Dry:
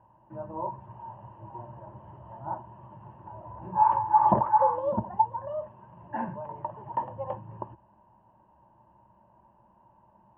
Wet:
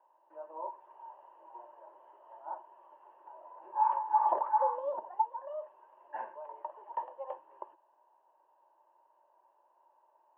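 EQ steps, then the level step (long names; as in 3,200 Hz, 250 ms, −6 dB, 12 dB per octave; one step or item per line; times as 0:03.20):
Butterworth high-pass 400 Hz 36 dB per octave
−6.5 dB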